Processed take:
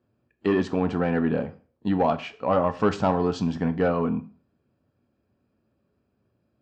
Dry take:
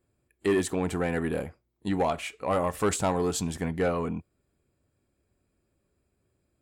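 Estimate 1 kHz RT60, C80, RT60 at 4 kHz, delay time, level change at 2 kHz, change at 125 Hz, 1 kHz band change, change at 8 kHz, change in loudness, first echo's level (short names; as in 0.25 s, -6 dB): 0.40 s, 21.5 dB, 0.40 s, none, +1.0 dB, +4.0 dB, +4.0 dB, under -15 dB, +3.5 dB, none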